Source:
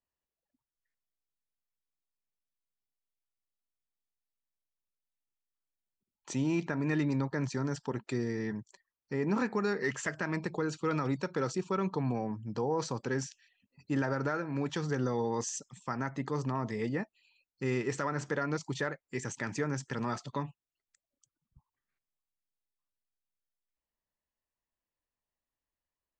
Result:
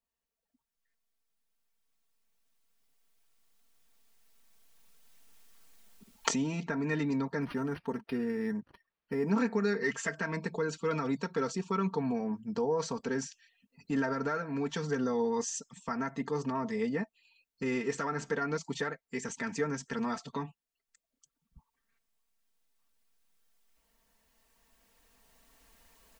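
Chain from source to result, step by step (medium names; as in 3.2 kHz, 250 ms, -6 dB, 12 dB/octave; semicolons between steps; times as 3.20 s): recorder AGC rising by 5.6 dB/s; comb 4.4 ms, depth 82%; 7.42–9.30 s: decimation joined by straight lines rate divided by 6×; trim -2 dB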